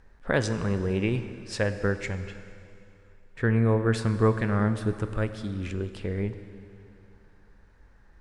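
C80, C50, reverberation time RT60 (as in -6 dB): 11.5 dB, 11.0 dB, 2.7 s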